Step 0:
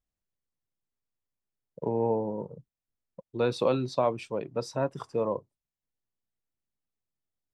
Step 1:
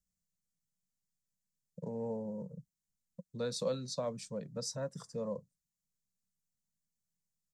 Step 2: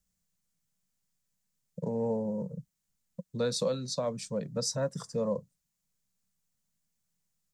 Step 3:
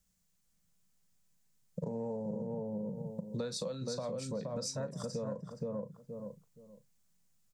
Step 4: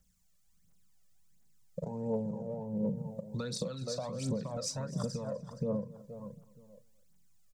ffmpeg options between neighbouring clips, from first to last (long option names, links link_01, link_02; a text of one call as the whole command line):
ffmpeg -i in.wav -filter_complex "[0:a]firequalizer=gain_entry='entry(110,0);entry(180,11);entry(340,-18);entry(510,-4);entry(770,-16);entry(1800,-5);entry(2600,-16);entry(4100,1);entry(6900,10);entry(11000,3)':delay=0.05:min_phase=1,acrossover=split=330|650|4500[link_01][link_02][link_03][link_04];[link_01]acompressor=threshold=-42dB:ratio=6[link_05];[link_05][link_02][link_03][link_04]amix=inputs=4:normalize=0,volume=-2dB" out.wav
ffmpeg -i in.wav -af "alimiter=level_in=3.5dB:limit=-24dB:level=0:latency=1:release=452,volume=-3.5dB,volume=7.5dB" out.wav
ffmpeg -i in.wav -filter_complex "[0:a]asplit=2[link_01][link_02];[link_02]adelay=38,volume=-13.5dB[link_03];[link_01][link_03]amix=inputs=2:normalize=0,asplit=2[link_04][link_05];[link_05]adelay=472,lowpass=frequency=1000:poles=1,volume=-3dB,asplit=2[link_06][link_07];[link_07]adelay=472,lowpass=frequency=1000:poles=1,volume=0.24,asplit=2[link_08][link_09];[link_09]adelay=472,lowpass=frequency=1000:poles=1,volume=0.24[link_10];[link_04][link_06][link_08][link_10]amix=inputs=4:normalize=0,acompressor=threshold=-38dB:ratio=12,volume=3.5dB" out.wav
ffmpeg -i in.wav -af "aphaser=in_gain=1:out_gain=1:delay=1.8:decay=0.61:speed=1.4:type=triangular,aecho=1:1:249:0.1" out.wav